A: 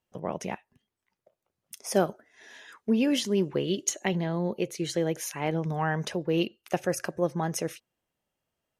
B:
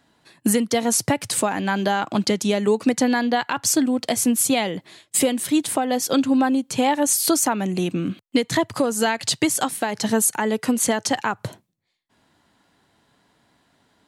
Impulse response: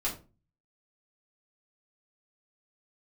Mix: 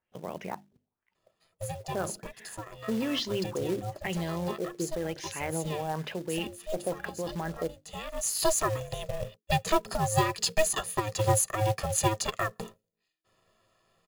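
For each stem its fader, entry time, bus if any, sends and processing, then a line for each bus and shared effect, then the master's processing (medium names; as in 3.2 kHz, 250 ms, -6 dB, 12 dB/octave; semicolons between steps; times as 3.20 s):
-3.5 dB, 0.00 s, no send, hum notches 50/100/150/200/250/300/350 Hz; peak limiter -20.5 dBFS, peak gain reduction 9.5 dB; LFO low-pass sine 1 Hz 510–4400 Hz
-7.5 dB, 1.15 s, no send, rippled EQ curve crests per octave 1.8, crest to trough 17 dB; ring modulator 320 Hz; auto duck -12 dB, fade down 1.70 s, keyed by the first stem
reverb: none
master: short-mantissa float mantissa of 2-bit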